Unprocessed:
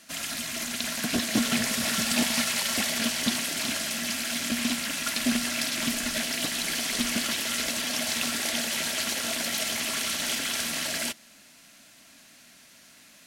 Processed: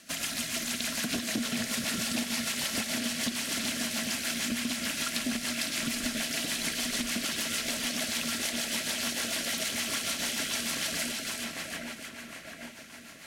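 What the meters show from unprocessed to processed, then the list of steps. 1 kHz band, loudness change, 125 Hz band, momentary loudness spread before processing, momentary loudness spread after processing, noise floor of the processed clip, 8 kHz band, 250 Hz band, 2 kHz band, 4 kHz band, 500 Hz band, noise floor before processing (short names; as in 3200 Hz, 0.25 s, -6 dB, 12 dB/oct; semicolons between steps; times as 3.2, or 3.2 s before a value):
-4.5 dB, -3.5 dB, -2.5 dB, 4 LU, 7 LU, -47 dBFS, -3.5 dB, -3.5 dB, -3.5 dB, -3.5 dB, -3.5 dB, -54 dBFS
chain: split-band echo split 2500 Hz, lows 0.796 s, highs 0.324 s, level -7 dB; rotary speaker horn 6.7 Hz; compressor, threshold -32 dBFS, peak gain reduction 11 dB; gain +3.5 dB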